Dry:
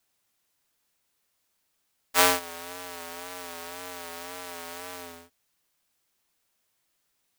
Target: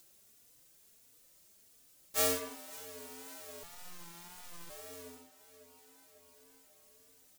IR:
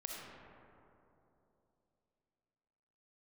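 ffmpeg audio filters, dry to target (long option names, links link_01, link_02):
-filter_complex "[0:a]firequalizer=gain_entry='entry(510,0);entry(830,-9);entry(7000,1)':delay=0.05:min_phase=1,aecho=1:1:545|1090|1635|2180:0.0891|0.0455|0.0232|0.0118,acompressor=mode=upward:threshold=-40dB:ratio=2.5,asplit=2[link_01][link_02];[1:a]atrim=start_sample=2205,afade=type=out:start_time=0.28:duration=0.01,atrim=end_sample=12789[link_03];[link_02][link_03]afir=irnorm=-1:irlink=0,volume=-0.5dB[link_04];[link_01][link_04]amix=inputs=2:normalize=0,asettb=1/sr,asplit=3[link_05][link_06][link_07];[link_05]atrim=end=3.634[link_08];[link_06]atrim=start=3.63:end=4.7,asetpts=PTS-STARTPTS,afade=type=in:duration=0.004:curve=qsin,afade=type=out:start_time=1.066:duration=0.004:curve=qsin,aeval=exprs='abs(val(0))':channel_layout=same[link_09];[link_07]atrim=start=4.696[link_10];[link_08][link_09]acrossfade=duration=0.004:curve1=hsin:curve2=qsin[link_11];[link_11][link_10]acrossfade=duration=0.004:curve1=qsin:curve2=hsin,asplit=2[link_12][link_13];[link_13]adelay=3.4,afreqshift=1.5[link_14];[link_12][link_14]amix=inputs=2:normalize=1,volume=-8dB"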